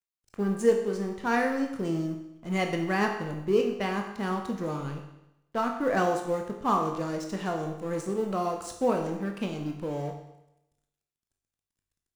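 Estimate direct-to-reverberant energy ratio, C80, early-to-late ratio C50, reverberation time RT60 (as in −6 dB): 2.0 dB, 8.5 dB, 6.0 dB, 0.85 s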